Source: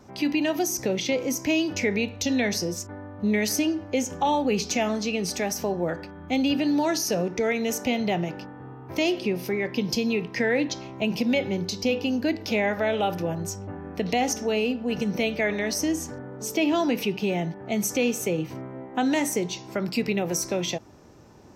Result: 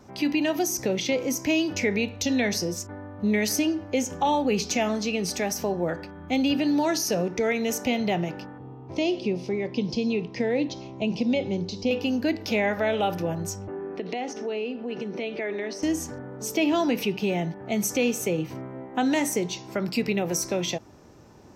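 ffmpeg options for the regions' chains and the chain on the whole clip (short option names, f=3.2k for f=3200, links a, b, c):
-filter_complex "[0:a]asettb=1/sr,asplit=3[a][b][c];[a]atrim=end=8.584[d];[b]atrim=start=8.58:end=11.91,asetpts=PTS-STARTPTS,afade=t=in:d=0.004:c=qsin,afade=t=out:st=3.326:d=0.004:c=qsin,acrossover=split=4300[e][f];[f]acompressor=threshold=-43dB:ratio=4:attack=1:release=60[g];[e][g]amix=inputs=2:normalize=0,lowpass=f=7.2k:w=0.5412,lowpass=f=7.2k:w=1.3066,equalizer=f=1.6k:w=1.5:g=-13[h];[c]atrim=start=11.906[i];[d][h]acrossfade=d=0.004:c1=hsin:c2=qsin[j];[j][i]acrossfade=d=0.004:c1=qsin:c2=hsin,asettb=1/sr,asplit=3[k][l][m];[k]atrim=end=13.684[n];[l]atrim=start=13.68:end=15.83,asetpts=PTS-STARTPTS,afade=t=in:d=0.004:c=qsin,afade=t=out:st=2.146:d=0.004:c=qsin,equalizer=f=380:w=6.6:g=13.5,acompressor=threshold=-29dB:ratio=2.5:attack=3.2:release=140:knee=1:detection=peak,highpass=210,lowpass=4k[o];[m]atrim=start=15.826[p];[n][o]acrossfade=d=0.004:c1=hsin:c2=qsin[q];[q][p]acrossfade=d=0.004:c1=qsin:c2=hsin"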